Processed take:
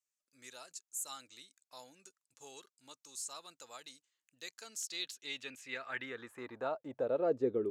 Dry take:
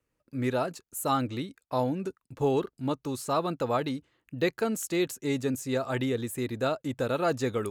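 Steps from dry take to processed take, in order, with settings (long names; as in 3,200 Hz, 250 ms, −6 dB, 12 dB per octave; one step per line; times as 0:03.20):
band-pass filter sweep 7,000 Hz → 370 Hz, 0:04.51–0:07.58
dynamic equaliser 880 Hz, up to −6 dB, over −47 dBFS, Q 0.72
level +2.5 dB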